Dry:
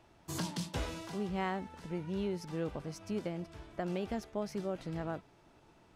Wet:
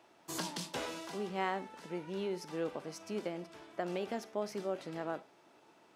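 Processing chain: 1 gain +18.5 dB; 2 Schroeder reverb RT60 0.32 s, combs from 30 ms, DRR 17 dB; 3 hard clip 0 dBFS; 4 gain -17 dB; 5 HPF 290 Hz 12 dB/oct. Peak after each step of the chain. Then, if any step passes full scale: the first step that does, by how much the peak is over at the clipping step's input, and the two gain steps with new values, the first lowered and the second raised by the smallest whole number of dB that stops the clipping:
-4.0, -4.0, -4.0, -21.0, -21.0 dBFS; no overload

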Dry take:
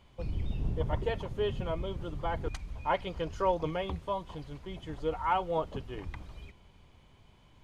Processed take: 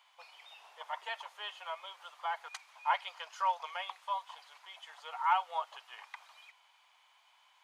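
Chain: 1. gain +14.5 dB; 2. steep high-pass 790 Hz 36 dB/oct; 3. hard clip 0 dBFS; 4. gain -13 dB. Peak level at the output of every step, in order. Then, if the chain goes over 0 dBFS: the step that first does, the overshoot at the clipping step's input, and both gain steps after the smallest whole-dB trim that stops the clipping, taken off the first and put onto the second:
-2.0, -3.5, -3.5, -16.5 dBFS; no overload

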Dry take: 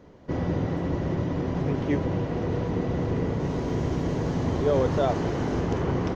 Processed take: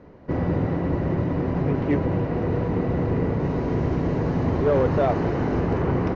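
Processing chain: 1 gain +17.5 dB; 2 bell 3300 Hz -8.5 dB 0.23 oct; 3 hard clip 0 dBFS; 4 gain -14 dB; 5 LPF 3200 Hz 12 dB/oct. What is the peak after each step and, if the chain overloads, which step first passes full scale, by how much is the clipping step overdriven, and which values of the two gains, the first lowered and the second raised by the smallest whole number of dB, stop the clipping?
+6.0, +6.0, 0.0, -14.0, -13.5 dBFS; step 1, 6.0 dB; step 1 +11.5 dB, step 4 -8 dB

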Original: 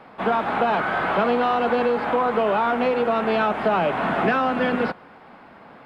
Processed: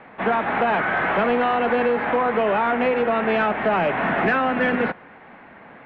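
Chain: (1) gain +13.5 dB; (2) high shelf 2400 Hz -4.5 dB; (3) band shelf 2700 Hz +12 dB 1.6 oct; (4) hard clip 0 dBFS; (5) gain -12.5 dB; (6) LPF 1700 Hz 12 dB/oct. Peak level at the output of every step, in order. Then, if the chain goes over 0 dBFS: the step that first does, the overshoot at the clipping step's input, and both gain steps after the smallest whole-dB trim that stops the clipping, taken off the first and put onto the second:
+5.0, +5.0, +8.5, 0.0, -12.5, -12.0 dBFS; step 1, 8.5 dB; step 1 +4.5 dB, step 5 -3.5 dB

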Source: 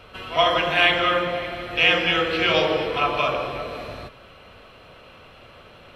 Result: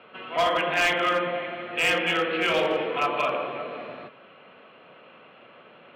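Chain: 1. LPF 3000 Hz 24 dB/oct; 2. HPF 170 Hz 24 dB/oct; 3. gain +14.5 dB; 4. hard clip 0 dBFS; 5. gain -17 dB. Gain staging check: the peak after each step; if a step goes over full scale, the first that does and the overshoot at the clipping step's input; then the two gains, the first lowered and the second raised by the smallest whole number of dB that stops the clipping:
-4.5, -5.0, +9.5, 0.0, -17.0 dBFS; step 3, 9.5 dB; step 3 +4.5 dB, step 5 -7 dB

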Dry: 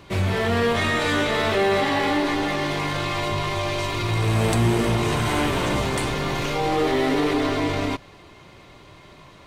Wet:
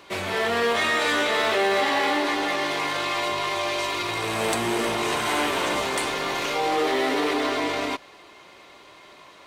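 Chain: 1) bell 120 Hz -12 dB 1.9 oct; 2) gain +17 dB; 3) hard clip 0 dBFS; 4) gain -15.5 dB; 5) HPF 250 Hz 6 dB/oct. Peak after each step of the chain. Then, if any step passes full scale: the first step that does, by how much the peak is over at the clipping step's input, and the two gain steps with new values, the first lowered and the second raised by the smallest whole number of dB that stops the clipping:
-12.0, +5.0, 0.0, -15.5, -13.0 dBFS; step 2, 5.0 dB; step 2 +12 dB, step 4 -10.5 dB

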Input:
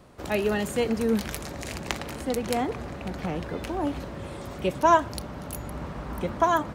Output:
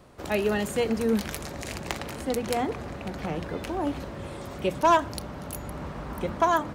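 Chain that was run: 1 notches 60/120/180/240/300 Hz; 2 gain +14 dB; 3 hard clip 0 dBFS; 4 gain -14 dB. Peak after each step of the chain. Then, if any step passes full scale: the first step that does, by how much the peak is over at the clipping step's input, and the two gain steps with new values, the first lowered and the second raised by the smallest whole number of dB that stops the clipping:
-7.0, +7.0, 0.0, -14.0 dBFS; step 2, 7.0 dB; step 2 +7 dB, step 4 -7 dB

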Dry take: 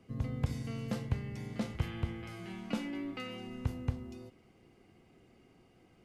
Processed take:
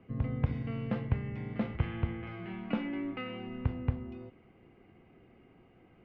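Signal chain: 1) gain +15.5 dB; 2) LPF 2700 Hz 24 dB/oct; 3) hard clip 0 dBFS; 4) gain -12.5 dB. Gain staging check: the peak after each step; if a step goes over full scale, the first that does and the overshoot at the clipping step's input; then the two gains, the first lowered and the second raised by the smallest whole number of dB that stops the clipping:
-3.0, -3.0, -3.0, -15.5 dBFS; no overload

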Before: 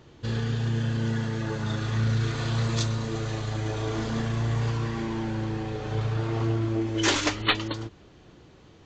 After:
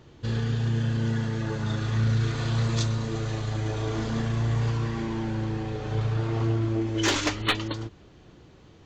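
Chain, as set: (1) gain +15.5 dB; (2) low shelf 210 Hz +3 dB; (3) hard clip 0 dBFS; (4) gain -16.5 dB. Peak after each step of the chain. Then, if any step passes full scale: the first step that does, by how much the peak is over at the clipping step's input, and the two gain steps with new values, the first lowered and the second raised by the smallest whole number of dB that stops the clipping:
+3.0, +3.5, 0.0, -16.5 dBFS; step 1, 3.5 dB; step 1 +11.5 dB, step 4 -12.5 dB

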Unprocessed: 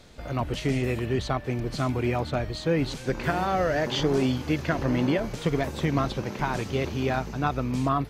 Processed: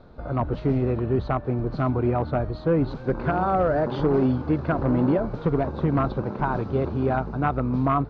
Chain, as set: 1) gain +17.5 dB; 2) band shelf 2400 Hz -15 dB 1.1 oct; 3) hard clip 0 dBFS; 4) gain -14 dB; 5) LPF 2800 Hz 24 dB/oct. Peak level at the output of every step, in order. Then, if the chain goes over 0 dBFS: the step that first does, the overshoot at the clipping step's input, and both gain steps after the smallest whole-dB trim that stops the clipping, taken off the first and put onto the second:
+7.0, +6.5, 0.0, -14.0, -13.0 dBFS; step 1, 6.5 dB; step 1 +10.5 dB, step 4 -7 dB

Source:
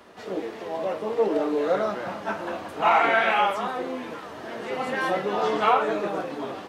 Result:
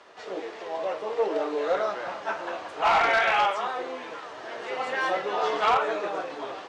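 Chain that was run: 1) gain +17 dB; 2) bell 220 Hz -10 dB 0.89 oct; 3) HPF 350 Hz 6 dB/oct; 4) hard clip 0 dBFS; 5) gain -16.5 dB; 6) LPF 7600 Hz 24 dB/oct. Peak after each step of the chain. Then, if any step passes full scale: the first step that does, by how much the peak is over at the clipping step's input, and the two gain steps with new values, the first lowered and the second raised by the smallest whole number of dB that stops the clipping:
+7.5, +7.5, +7.0, 0.0, -16.5, -16.0 dBFS; step 1, 7.0 dB; step 1 +10 dB, step 5 -9.5 dB

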